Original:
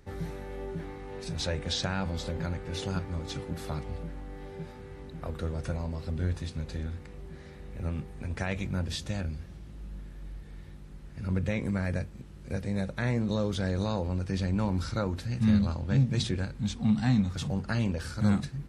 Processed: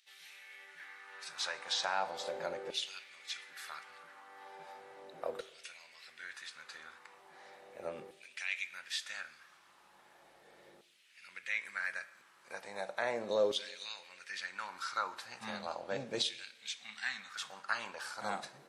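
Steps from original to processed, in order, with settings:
auto-filter high-pass saw down 0.37 Hz 480–3,200 Hz
coupled-rooms reverb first 0.72 s, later 2.4 s, DRR 13 dB
level −3 dB

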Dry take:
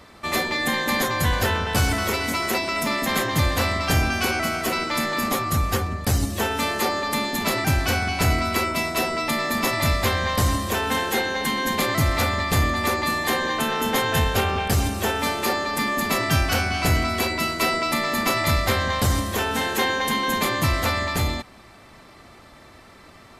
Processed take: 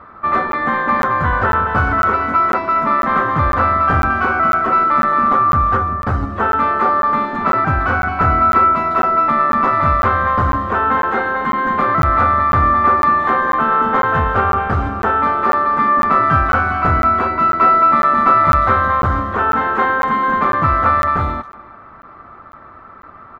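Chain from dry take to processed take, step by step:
low-pass with resonance 1,300 Hz, resonance Q 5.4
far-end echo of a speakerphone 350 ms, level −21 dB
regular buffer underruns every 0.50 s, samples 512, zero, from 0:00.52
level +2.5 dB

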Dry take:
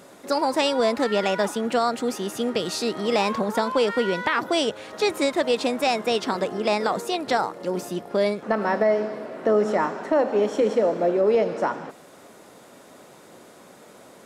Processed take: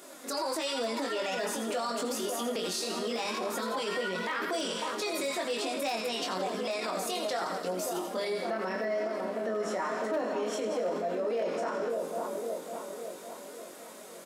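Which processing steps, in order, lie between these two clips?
notch filter 860 Hz, Q 17
flanger 0.88 Hz, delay 2.7 ms, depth 3.3 ms, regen +18%
mains-hum notches 50/100/150/200/250/300/350/400/450 Hz
double-tracking delay 22 ms −3.5 dB
on a send: echo with a time of its own for lows and highs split 1,200 Hz, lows 553 ms, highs 84 ms, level −8 dB
on the sum: hard clipping −14.5 dBFS, distortion −24 dB
high-shelf EQ 5,300 Hz +9 dB
brickwall limiter −24 dBFS, peak gain reduction 14 dB
high-pass filter 230 Hz 12 dB per octave

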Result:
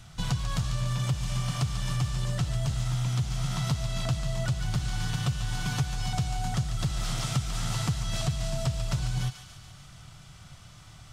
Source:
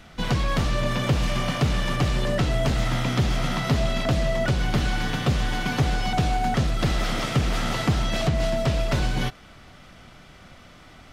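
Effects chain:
octave-band graphic EQ 125/250/500/2,000/8,000 Hz +11/−11/−9/−7/+8 dB
downward compressor, threshold −23 dBFS, peak gain reduction 12.5 dB
on a send: feedback echo with a high-pass in the loop 144 ms, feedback 65%, high-pass 1,100 Hz, level −8 dB
on the sum: level −2 dB

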